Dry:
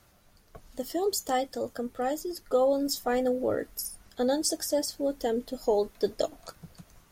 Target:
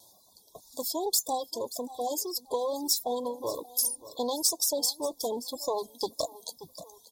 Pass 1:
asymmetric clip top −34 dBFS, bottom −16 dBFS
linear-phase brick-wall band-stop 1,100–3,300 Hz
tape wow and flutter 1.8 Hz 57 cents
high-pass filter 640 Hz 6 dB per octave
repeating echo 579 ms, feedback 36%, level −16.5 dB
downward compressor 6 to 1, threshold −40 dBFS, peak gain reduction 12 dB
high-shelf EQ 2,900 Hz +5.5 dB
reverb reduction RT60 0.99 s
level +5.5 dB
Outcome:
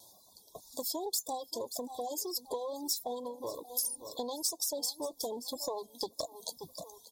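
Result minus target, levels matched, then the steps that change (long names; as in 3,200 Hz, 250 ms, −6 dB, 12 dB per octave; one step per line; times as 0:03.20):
downward compressor: peak gain reduction +7.5 dB
change: downward compressor 6 to 1, threshold −31 dBFS, peak gain reduction 4.5 dB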